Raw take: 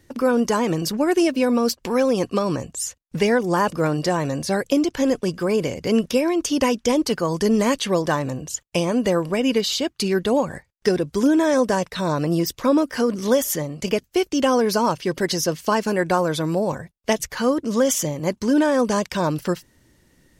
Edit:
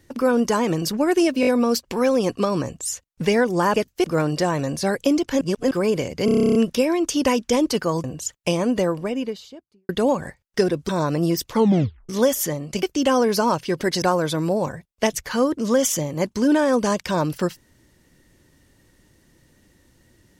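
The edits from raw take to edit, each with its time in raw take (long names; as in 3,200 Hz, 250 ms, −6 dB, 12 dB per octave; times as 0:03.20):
0:01.41: stutter 0.02 s, 4 plays
0:05.07–0:05.37: reverse
0:05.91: stutter 0.03 s, 11 plays
0:07.40–0:08.32: remove
0:08.82–0:10.17: fade out and dull
0:11.17–0:11.98: remove
0:12.60: tape stop 0.58 s
0:13.92–0:14.20: move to 0:03.70
0:15.39–0:16.08: remove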